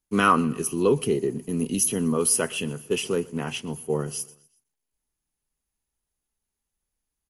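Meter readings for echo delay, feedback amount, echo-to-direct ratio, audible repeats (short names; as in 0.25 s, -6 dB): 0.123 s, 50%, -22.5 dB, 2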